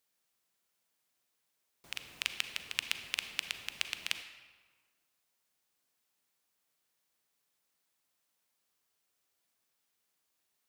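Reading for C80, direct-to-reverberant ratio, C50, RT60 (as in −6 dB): 11.0 dB, 8.5 dB, 9.5 dB, 1.5 s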